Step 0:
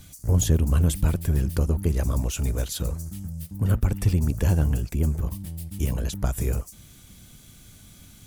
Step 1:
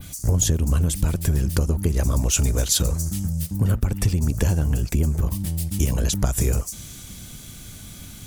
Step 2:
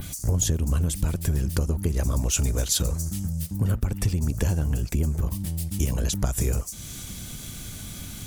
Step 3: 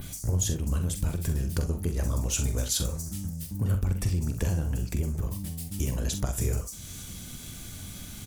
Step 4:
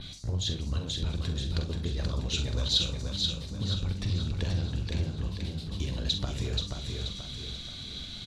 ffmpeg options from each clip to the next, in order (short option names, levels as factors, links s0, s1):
-af "acompressor=threshold=0.0501:ratio=6,adynamicequalizer=threshold=0.00224:dfrequency=6400:dqfactor=1:tfrequency=6400:tqfactor=1:attack=5:release=100:ratio=0.375:range=3.5:mode=boostabove:tftype=bell,volume=2.82"
-af "acompressor=mode=upward:threshold=0.0562:ratio=2.5,volume=0.668"
-filter_complex "[0:a]asplit=2[s0][s1];[s1]aecho=0:1:44|65:0.376|0.211[s2];[s0][s2]amix=inputs=2:normalize=0,flanger=delay=7.7:depth=4.4:regen=83:speed=0.34:shape=sinusoidal"
-filter_complex "[0:a]lowpass=f=3900:t=q:w=7.9,asplit=2[s0][s1];[s1]aecho=0:1:481|962|1443|1924|2405|2886:0.631|0.29|0.134|0.0614|0.0283|0.013[s2];[s0][s2]amix=inputs=2:normalize=0,volume=0.596"